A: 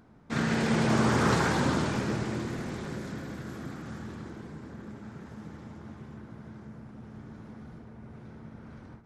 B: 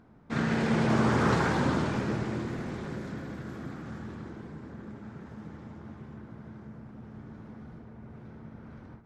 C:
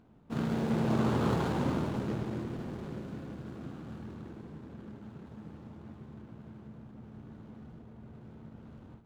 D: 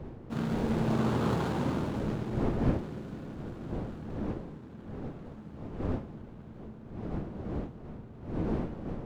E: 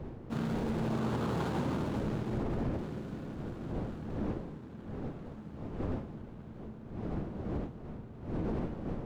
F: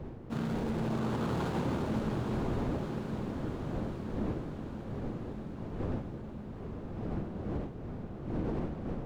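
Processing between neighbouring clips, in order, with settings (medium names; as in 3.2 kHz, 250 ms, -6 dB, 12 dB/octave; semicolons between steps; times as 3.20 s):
treble shelf 4.7 kHz -10 dB
median filter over 25 samples; trim -3 dB
wind noise 300 Hz -37 dBFS
peak limiter -25.5 dBFS, peak gain reduction 10.5 dB
echo that smears into a reverb 949 ms, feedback 54%, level -6.5 dB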